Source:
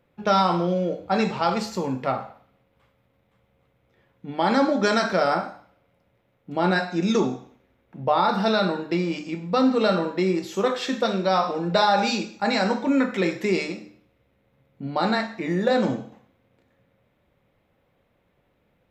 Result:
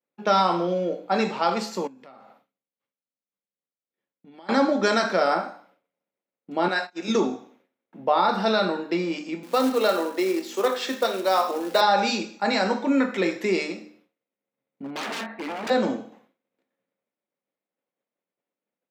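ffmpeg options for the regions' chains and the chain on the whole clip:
ffmpeg -i in.wav -filter_complex "[0:a]asettb=1/sr,asplit=3[link_01][link_02][link_03];[link_01]atrim=end=1.874[link_04];[link_02]atrim=start=1.87:end=4.49,asetpts=PTS-STARTPTS,afade=type=in:duration=0.004:curve=qsin,afade=type=out:start_time=2.616:duration=0.004:curve=qsin,equalizer=frequency=820:width=0.35:gain=-6,acompressor=threshold=-44dB:ratio=6:attack=3.2:release=140:knee=1:detection=peak[link_05];[link_03]atrim=start=4.486[link_06];[link_04][link_05]acrossfade=duration=0.004:curve1=hsin:curve2=qsin[link_07];[link_07][link_06]acrossfade=duration=0.004:curve1=qsin:curve2=hsin,asettb=1/sr,asplit=3[link_08][link_09][link_10];[link_08]atrim=end=6.684[link_11];[link_09]atrim=start=6.68:end=7.08,asetpts=PTS-STARTPTS,afade=type=in:duration=0.004:curve=qsin,afade=type=out:start_time=0.396:duration=0.004:curve=qsin,highpass=frequency=740:poles=1,agate=range=-25dB:threshold=-35dB:ratio=16:release=100:detection=peak[link_12];[link_10]atrim=start=7.076[link_13];[link_11][link_12]acrossfade=duration=0.004:curve1=hsin:curve2=qsin[link_14];[link_14][link_13]acrossfade=duration=0.004:curve1=qsin:curve2=hsin,asettb=1/sr,asplit=3[link_15][link_16][link_17];[link_15]atrim=end=9.434[link_18];[link_16]atrim=start=9.43:end=11.81,asetpts=PTS-STARTPTS,afade=type=in:duration=0.004:curve=qsin,afade=type=out:start_time=2.376:duration=0.004:curve=qsin,aeval=exprs='val(0)+0.0282*(sin(2*PI*50*n/s)+sin(2*PI*2*50*n/s)/2+sin(2*PI*3*50*n/s)/3+sin(2*PI*4*50*n/s)/4+sin(2*PI*5*50*n/s)/5)':channel_layout=same,acrusher=bits=5:mode=log:mix=0:aa=0.000001,highpass=frequency=270:width=0.5412,highpass=frequency=270:width=1.3066[link_19];[link_17]atrim=start=11.806[link_20];[link_18][link_19]acrossfade=duration=0.004:curve1=hsin:curve2=qsin[link_21];[link_21][link_20]acrossfade=duration=0.004:curve1=qsin:curve2=hsin,asettb=1/sr,asplit=3[link_22][link_23][link_24];[link_22]atrim=end=14.824[link_25];[link_23]atrim=start=14.82:end=15.7,asetpts=PTS-STARTPTS,afade=type=in:duration=0.004:curve=qsin,afade=type=out:start_time=0.876:duration=0.004:curve=qsin,lowpass=frequency=2700:width=0.5412,lowpass=frequency=2700:width=1.3066,aeval=exprs='0.0501*(abs(mod(val(0)/0.0501+3,4)-2)-1)':channel_layout=same[link_26];[link_24]atrim=start=15.696[link_27];[link_25][link_26]acrossfade=duration=0.004:curve1=hsin:curve2=qsin[link_28];[link_28][link_27]acrossfade=duration=0.004:curve1=qsin:curve2=hsin,highpass=frequency=210:width=0.5412,highpass=frequency=210:width=1.3066,agate=range=-33dB:threshold=-55dB:ratio=3:detection=peak" out.wav

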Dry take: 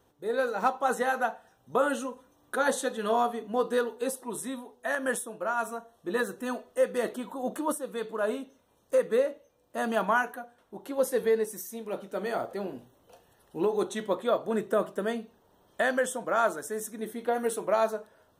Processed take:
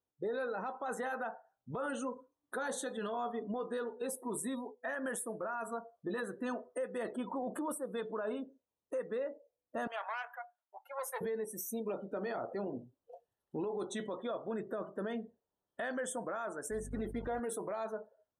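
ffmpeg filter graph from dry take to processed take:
ffmpeg -i in.wav -filter_complex "[0:a]asettb=1/sr,asplit=3[link_01][link_02][link_03];[link_01]atrim=end=9.874[link_04];[link_02]atrim=start=9.87:end=11.21,asetpts=PTS-STARTPTS,afade=type=in:duration=0.004:curve=qsin,afade=type=out:start_time=1.336:duration=0.004:curve=qsin,aeval=exprs='if(lt(val(0),0),0.251*val(0),val(0))':channel_layout=same,highpass=frequency=680:width=0.5412,highpass=frequency=680:width=1.3066,equalizer=frequency=14000:width=5.1:gain=3.5[link_05];[link_03]atrim=start=11.206[link_06];[link_04][link_05]acrossfade=duration=0.004:curve1=hsin:curve2=qsin[link_07];[link_07][link_06]acrossfade=duration=0.004:curve1=qsin:curve2=hsin,asettb=1/sr,asplit=3[link_08][link_09][link_10];[link_08]atrim=end=16.714[link_11];[link_09]atrim=start=16.71:end=17.4,asetpts=PTS-STARTPTS,afade=type=in:duration=0.004:curve=qsin,afade=type=out:start_time=0.686:duration=0.004:curve=qsin,acrusher=bits=6:mix=0:aa=0.5,aeval=exprs='val(0)+0.00562*(sin(2*PI*50*n/s)+sin(2*PI*2*50*n/s)/2+sin(2*PI*3*50*n/s)/3+sin(2*PI*4*50*n/s)/4+sin(2*PI*5*50*n/s)/5)':channel_layout=same,acrossover=split=5000[link_12][link_13];[link_13]acompressor=threshold=-44dB:ratio=4:attack=1:release=60[link_14];[link_12][link_14]amix=inputs=2:normalize=0[link_15];[link_10]atrim=start=17.396[link_16];[link_11][link_15]acrossfade=duration=0.004:curve1=hsin:curve2=qsin[link_17];[link_17][link_16]acrossfade=duration=0.004:curve1=qsin:curve2=hsin,afftdn=noise_reduction=33:noise_floor=-45,acompressor=threshold=-41dB:ratio=3,alimiter=level_in=11.5dB:limit=-24dB:level=0:latency=1:release=10,volume=-11.5dB,volume=5.5dB" out.wav

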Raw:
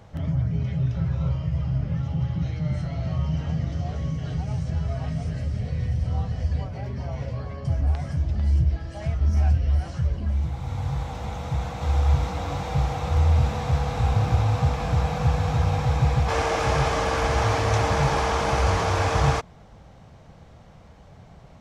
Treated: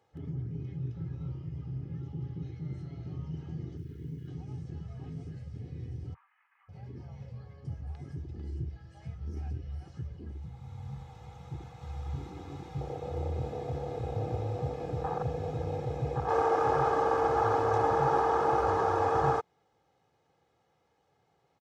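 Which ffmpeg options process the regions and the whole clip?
ffmpeg -i in.wav -filter_complex "[0:a]asettb=1/sr,asplit=3[link_01][link_02][link_03];[link_01]atrim=end=3.774[link_04];[link_02]atrim=start=3.77:end=4.28,asetpts=PTS-STARTPTS,afade=type=in:duration=0.004:curve=qsin,afade=type=out:start_time=0.506:duration=0.004:curve=qsin,asuperstop=centerf=780:order=12:qfactor=0.86,acrusher=bits=9:dc=4:mix=0:aa=0.000001,equalizer=frequency=7400:width=0.46:gain=-7.5[link_05];[link_03]atrim=start=4.276[link_06];[link_04][link_05]acrossfade=duration=0.004:curve1=hsin:curve2=qsin[link_07];[link_07][link_06]acrossfade=duration=0.004:curve1=qsin:curve2=hsin,asettb=1/sr,asplit=3[link_08][link_09][link_10];[link_08]atrim=end=6.144[link_11];[link_09]atrim=start=6.14:end=6.69,asetpts=PTS-STARTPTS,afade=type=in:duration=0.004:curve=qsin,afade=type=out:start_time=0.546:duration=0.004:curve=qsin,aeval=exprs='0.0562*(abs(mod(val(0)/0.0562+3,4)-2)-1)':channel_layout=same,asuperpass=centerf=1600:order=8:qfactor=1.1[link_12];[link_10]atrim=start=6.686[link_13];[link_11][link_12]acrossfade=duration=0.004:curve1=hsin:curve2=qsin[link_14];[link_14][link_13]acrossfade=duration=0.004:curve1=qsin:curve2=hsin,afwtdn=0.0708,highpass=200,aecho=1:1:2.4:0.59,volume=-3dB" out.wav

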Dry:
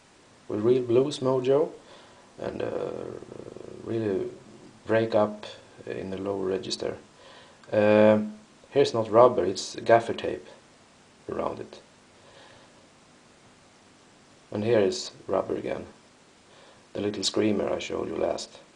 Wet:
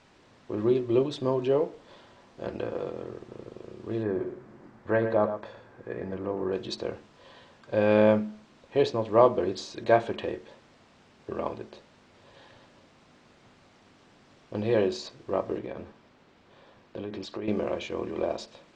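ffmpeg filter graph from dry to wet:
ffmpeg -i in.wav -filter_complex "[0:a]asettb=1/sr,asplit=3[link_01][link_02][link_03];[link_01]atrim=end=4.034[link_04];[link_02]atrim=start=4.03:end=6.53,asetpts=PTS-STARTPTS,afade=type=in:duration=0.004:curve=qsin,afade=type=out:start_time=2.496:duration=0.004:curve=qsin,highshelf=frequency=2300:width_type=q:width=1.5:gain=-8.5,aecho=1:1:115:0.316,atrim=end_sample=110250[link_05];[link_03]atrim=start=6.526[link_06];[link_04][link_05]acrossfade=duration=0.004:curve1=hsin:curve2=qsin[link_07];[link_07][link_06]acrossfade=duration=0.004:curve1=qsin:curve2=hsin,asettb=1/sr,asplit=3[link_08][link_09][link_10];[link_08]atrim=end=15.584[link_11];[link_09]atrim=start=15.58:end=17.48,asetpts=PTS-STARTPTS,afade=type=in:duration=0.004:curve=qsin,afade=type=out:start_time=1.896:duration=0.004:curve=qsin,acompressor=threshold=-29dB:ratio=6:attack=3.2:release=140:knee=1:detection=peak,acrusher=bits=8:mode=log:mix=0:aa=0.000001,lowpass=frequency=3300:poles=1[link_12];[link_10]atrim=start=17.476[link_13];[link_11][link_12]acrossfade=duration=0.004:curve1=hsin:curve2=qsin[link_14];[link_14][link_13]acrossfade=duration=0.004:curve1=qsin:curve2=hsin,lowpass=4900,lowshelf=frequency=140:gain=3,volume=-2.5dB" out.wav

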